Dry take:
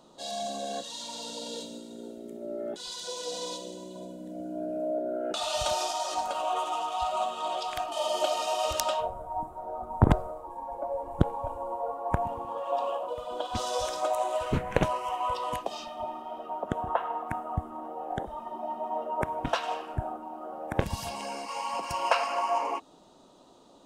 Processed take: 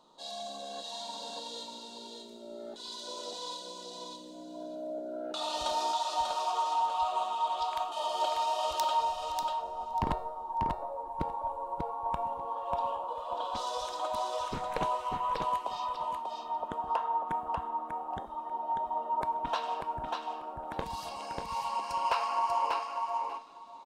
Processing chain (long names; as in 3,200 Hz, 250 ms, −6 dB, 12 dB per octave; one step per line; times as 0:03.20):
graphic EQ with 15 bands 100 Hz −9 dB, 1,000 Hz +10 dB, 4,000 Hz +8 dB
hard clipping −11.5 dBFS, distortion −21 dB
tuned comb filter 460 Hz, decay 0.54 s, mix 70%
repeating echo 591 ms, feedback 16%, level −4 dB